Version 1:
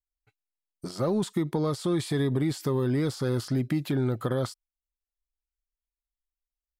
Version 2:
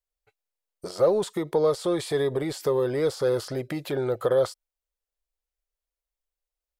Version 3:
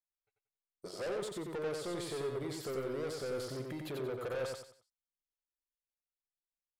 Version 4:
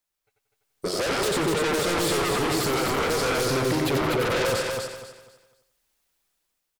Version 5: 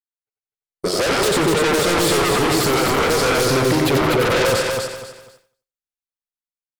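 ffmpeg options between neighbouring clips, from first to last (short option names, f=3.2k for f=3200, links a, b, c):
-af "equalizer=f=125:t=o:w=1:g=-7,equalizer=f=250:t=o:w=1:g=-12,equalizer=f=500:t=o:w=1:g=12,volume=1.5dB"
-af "agate=range=-13dB:threshold=-45dB:ratio=16:detection=peak,asoftclip=type=tanh:threshold=-27dB,aecho=1:1:91|182|273|364:0.668|0.214|0.0684|0.0219,volume=-9dB"
-af "dynaudnorm=f=180:g=7:m=9dB,aeval=exprs='0.0891*sin(PI/2*3.16*val(0)/0.0891)':c=same,aecho=1:1:248|496|744|992:0.631|0.17|0.046|0.0124,volume=-1.5dB"
-af "agate=range=-33dB:threshold=-51dB:ratio=3:detection=peak,volume=7dB"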